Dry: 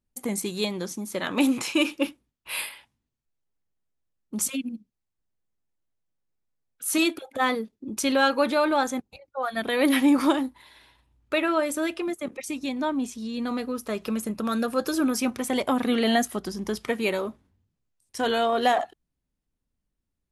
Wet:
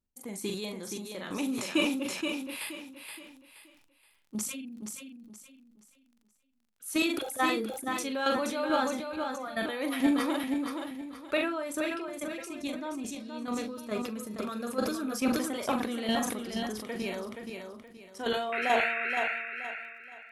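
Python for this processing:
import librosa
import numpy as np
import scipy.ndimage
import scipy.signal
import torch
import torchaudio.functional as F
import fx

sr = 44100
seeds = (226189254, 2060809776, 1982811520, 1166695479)

y = fx.dmg_crackle(x, sr, seeds[0], per_s=16.0, level_db=-44.0)
y = fx.chopper(y, sr, hz=2.3, depth_pct=60, duty_pct=15)
y = fx.spec_paint(y, sr, seeds[1], shape='noise', start_s=18.52, length_s=0.79, low_hz=1300.0, high_hz=2800.0, level_db=-30.0)
y = fx.doubler(y, sr, ms=42.0, db=-9)
y = fx.echo_feedback(y, sr, ms=474, feedback_pct=31, wet_db=-6)
y = fx.sustainer(y, sr, db_per_s=45.0)
y = y * 10.0 ** (-4.0 / 20.0)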